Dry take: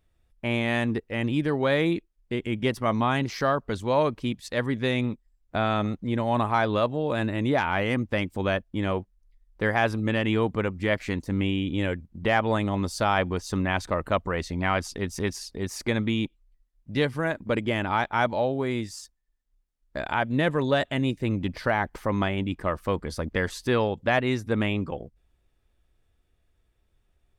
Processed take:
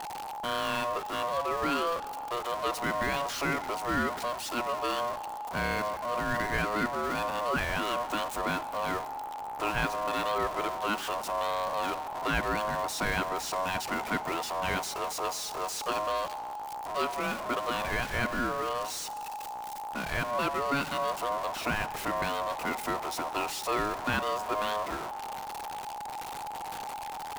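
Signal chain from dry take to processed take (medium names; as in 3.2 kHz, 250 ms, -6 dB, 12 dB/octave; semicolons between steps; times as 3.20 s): jump at every zero crossing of -23.5 dBFS; Schroeder reverb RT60 2.7 s, combs from 31 ms, DRR 16 dB; ring modulator 840 Hz; trim -6 dB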